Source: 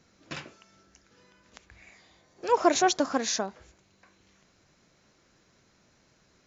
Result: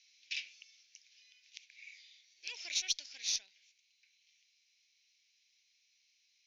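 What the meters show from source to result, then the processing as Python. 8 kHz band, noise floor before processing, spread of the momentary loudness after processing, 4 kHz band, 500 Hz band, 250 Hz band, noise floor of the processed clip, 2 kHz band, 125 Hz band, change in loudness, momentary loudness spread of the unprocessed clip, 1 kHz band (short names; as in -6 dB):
n/a, -66 dBFS, 21 LU, -2.0 dB, under -40 dB, under -40 dB, -75 dBFS, -9.0 dB, under -30 dB, -10.0 dB, 18 LU, under -40 dB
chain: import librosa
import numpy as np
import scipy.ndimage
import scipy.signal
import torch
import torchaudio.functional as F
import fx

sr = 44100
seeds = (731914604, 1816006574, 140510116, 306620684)

y = scipy.signal.sosfilt(scipy.signal.ellip(3, 1.0, 40, [2300.0, 6000.0], 'bandpass', fs=sr, output='sos'), x)
y = fx.cheby_harmonics(y, sr, harmonics=(6, 8), levels_db=(-34, -44), full_scale_db=-15.5)
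y = fx.rider(y, sr, range_db=4, speed_s=0.5)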